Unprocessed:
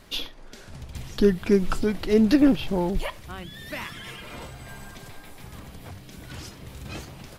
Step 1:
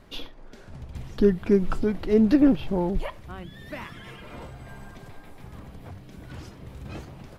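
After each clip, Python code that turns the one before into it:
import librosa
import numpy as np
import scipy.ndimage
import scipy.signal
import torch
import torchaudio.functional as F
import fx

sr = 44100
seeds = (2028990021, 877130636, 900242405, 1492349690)

y = fx.high_shelf(x, sr, hz=2300.0, db=-12.0)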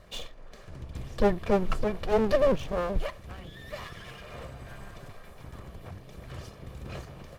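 y = fx.lower_of_two(x, sr, delay_ms=1.7)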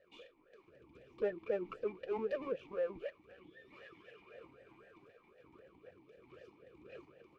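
y = fx.vowel_sweep(x, sr, vowels='e-u', hz=3.9)
y = y * librosa.db_to_amplitude(-1.0)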